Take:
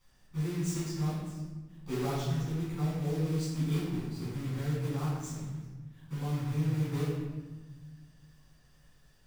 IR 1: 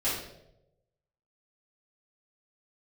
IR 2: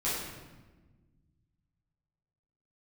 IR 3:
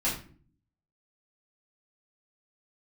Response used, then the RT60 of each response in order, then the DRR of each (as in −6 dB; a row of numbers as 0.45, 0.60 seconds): 2; 0.90, 1.3, 0.45 seconds; −12.0, −10.5, −8.0 decibels